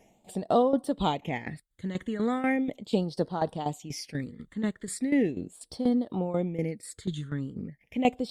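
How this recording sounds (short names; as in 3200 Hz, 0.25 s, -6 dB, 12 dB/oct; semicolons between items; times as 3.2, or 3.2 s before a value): phasing stages 8, 0.38 Hz, lowest notch 710–2300 Hz; tremolo saw down 4.1 Hz, depth 75%; Opus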